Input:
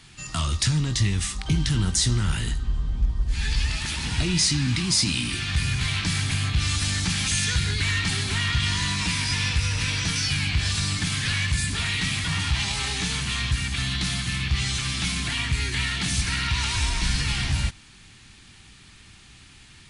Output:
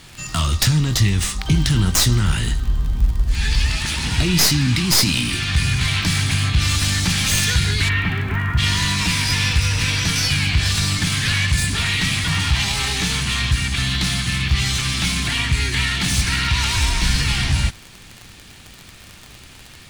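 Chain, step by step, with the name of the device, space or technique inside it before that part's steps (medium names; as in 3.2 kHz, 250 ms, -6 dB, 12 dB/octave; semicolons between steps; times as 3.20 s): 7.88–8.57 s: low-pass 3.2 kHz -> 1.6 kHz 24 dB/octave; record under a worn stylus (tracing distortion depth 0.047 ms; crackle 51 per s -31 dBFS; pink noise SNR 32 dB); trim +6 dB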